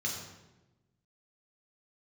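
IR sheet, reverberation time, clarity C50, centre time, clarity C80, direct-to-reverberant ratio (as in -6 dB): 1.1 s, 3.5 dB, 48 ms, 5.5 dB, -2.5 dB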